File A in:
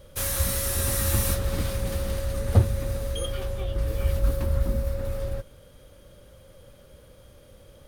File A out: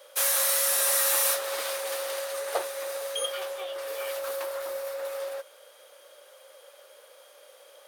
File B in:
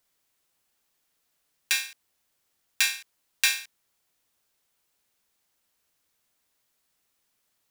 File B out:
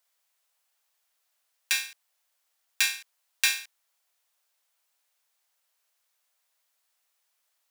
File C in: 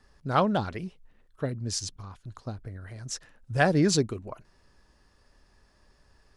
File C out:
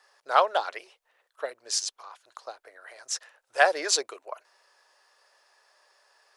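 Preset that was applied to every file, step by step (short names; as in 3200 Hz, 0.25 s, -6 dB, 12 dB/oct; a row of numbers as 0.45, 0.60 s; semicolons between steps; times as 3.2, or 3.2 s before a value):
inverse Chebyshev high-pass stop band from 210 Hz, stop band 50 dB; match loudness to -27 LUFS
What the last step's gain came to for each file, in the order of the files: +4.5, -1.0, +4.5 dB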